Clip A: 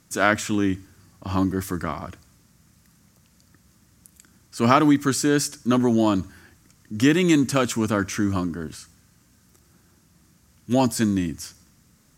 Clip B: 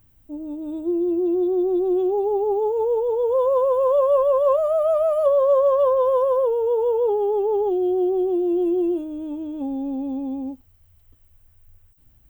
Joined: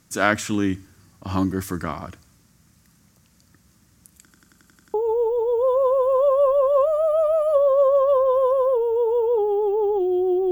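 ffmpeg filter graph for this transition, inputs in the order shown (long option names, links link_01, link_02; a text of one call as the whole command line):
ffmpeg -i cue0.wav -i cue1.wav -filter_complex "[0:a]apad=whole_dur=10.51,atrim=end=10.51,asplit=8[link_01][link_02][link_03][link_04][link_05][link_06][link_07][link_08];[link_01]atrim=end=4.312[link_09];[link_02]atrim=start=4.218:end=4.312[link_10];[link_03]atrim=start=4.218:end=4.312[link_11];[link_04]atrim=start=4.218:end=4.312[link_12];[link_05]atrim=start=4.218:end=4.312[link_13];[link_06]atrim=start=4.218:end=4.312[link_14];[link_07]atrim=start=4.218:end=4.312[link_15];[link_08]atrim=start=4.218:end=4.312[link_16];[1:a]atrim=start=2.648:end=8.22[link_17];[link_09][link_10]acrossfade=duration=0.004:curve1=hsin:curve2=hsin[link_18];[link_18][link_11]acrossfade=duration=0.004:curve1=hsin:curve2=hsin[link_19];[link_19][link_12]acrossfade=duration=0.004:curve1=hsin:curve2=hsin[link_20];[link_20][link_13]acrossfade=duration=0.004:curve1=hsin:curve2=hsin[link_21];[link_21][link_14]acrossfade=duration=0.004:curve1=hsin:curve2=hsin[link_22];[link_22][link_15]acrossfade=duration=0.004:curve1=hsin:curve2=hsin[link_23];[link_23][link_16]acrossfade=duration=0.004:curve1=hsin:curve2=hsin[link_24];[link_24][link_17]acrossfade=duration=0.004:curve1=hsin:curve2=hsin" out.wav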